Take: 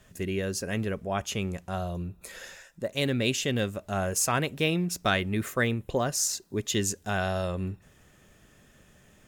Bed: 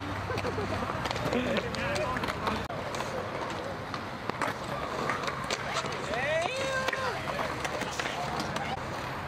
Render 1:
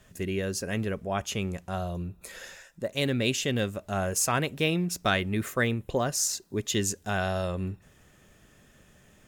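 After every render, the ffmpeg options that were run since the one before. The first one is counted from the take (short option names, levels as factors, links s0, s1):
-af anull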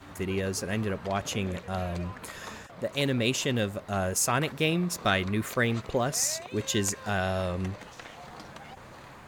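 -filter_complex "[1:a]volume=0.237[s0];[0:a][s0]amix=inputs=2:normalize=0"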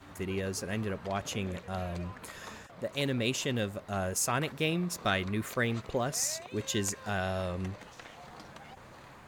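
-af "volume=0.631"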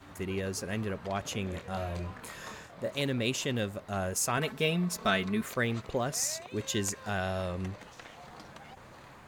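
-filter_complex "[0:a]asettb=1/sr,asplit=3[s0][s1][s2];[s0]atrim=end=1.504[s3];[s1]atrim=start=1.5:end=2.99,asetpts=PTS-STARTPTS,afade=t=in:d=0.004:c=qsin,afade=t=out:st=1.486:d=0.004:c=qsin,asplit=2[s4][s5];[s5]adelay=25,volume=0.596[s6];[s4][s6]amix=inputs=2:normalize=0,atrim=end_sample=65709[s7];[s2]atrim=start=2.986[s8];[s3][s7]acrossfade=d=0.004:c1=hsin:c2=qsin[s9];[s9][s8]acrossfade=d=0.004:c1=qsin:c2=hsin,asettb=1/sr,asplit=3[s10][s11][s12];[s10]atrim=end=4.374[s13];[s11]atrim=start=4.37:end=5.43,asetpts=PTS-STARTPTS,afade=t=in:d=0.004:c=qsin,afade=t=out:st=1.056:d=0.004:c=qsin,aecho=1:1:4.6:0.65,atrim=end_sample=46746[s14];[s12]atrim=start=5.426[s15];[s13][s14]acrossfade=d=0.004:c1=hsin:c2=qsin[s16];[s16][s15]acrossfade=d=0.004:c1=qsin:c2=hsin"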